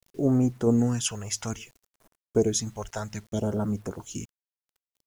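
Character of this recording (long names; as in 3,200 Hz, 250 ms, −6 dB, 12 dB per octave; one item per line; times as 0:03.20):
phaser sweep stages 2, 0.6 Hz, lowest notch 250–3,600 Hz
tremolo saw down 1.5 Hz, depth 35%
a quantiser's noise floor 10 bits, dither none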